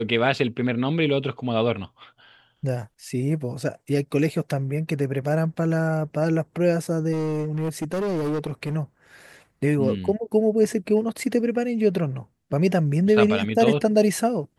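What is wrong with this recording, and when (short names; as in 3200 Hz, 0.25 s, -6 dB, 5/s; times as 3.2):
7.12–8.76 clipped -22.5 dBFS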